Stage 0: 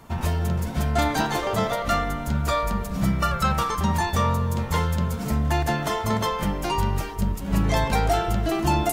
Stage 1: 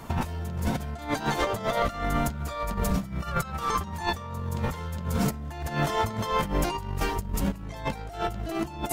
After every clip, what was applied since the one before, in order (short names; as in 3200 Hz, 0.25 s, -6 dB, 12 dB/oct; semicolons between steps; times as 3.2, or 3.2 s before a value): negative-ratio compressor -28 dBFS, ratio -0.5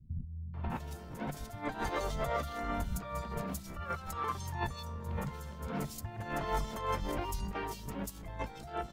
three bands offset in time lows, mids, highs 0.54/0.7 s, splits 180/3400 Hz; gain -8 dB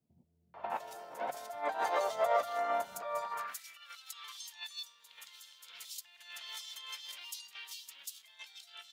high-pass sweep 650 Hz -> 3400 Hz, 3.17–3.82